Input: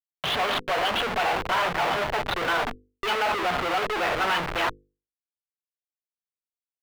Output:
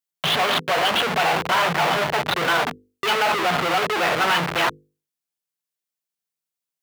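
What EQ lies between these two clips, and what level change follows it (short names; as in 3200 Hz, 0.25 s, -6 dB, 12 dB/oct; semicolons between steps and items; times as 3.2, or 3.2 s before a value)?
HPF 120 Hz 12 dB/oct; bell 160 Hz +10.5 dB 0.28 oct; high shelf 4000 Hz +5.5 dB; +4.0 dB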